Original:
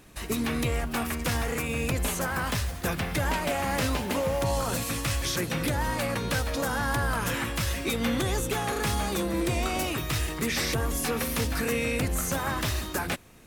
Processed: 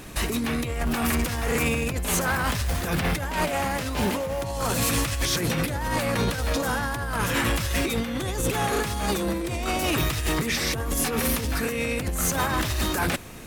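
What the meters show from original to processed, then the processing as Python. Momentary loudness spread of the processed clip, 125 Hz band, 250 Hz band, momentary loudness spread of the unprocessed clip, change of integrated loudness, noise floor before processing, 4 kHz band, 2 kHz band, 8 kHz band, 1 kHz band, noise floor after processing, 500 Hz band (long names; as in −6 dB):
4 LU, +2.0 dB, +3.0 dB, 2 LU, +3.0 dB, −36 dBFS, +3.0 dB, +3.0 dB, +3.5 dB, +3.0 dB, −30 dBFS, +2.0 dB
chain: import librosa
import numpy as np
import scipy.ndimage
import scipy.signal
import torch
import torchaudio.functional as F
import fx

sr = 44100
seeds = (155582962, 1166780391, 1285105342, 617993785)

y = fx.over_compress(x, sr, threshold_db=-31.0, ratio=-0.5)
y = 10.0 ** (-26.5 / 20.0) * np.tanh(y / 10.0 ** (-26.5 / 20.0))
y = y * 10.0 ** (8.5 / 20.0)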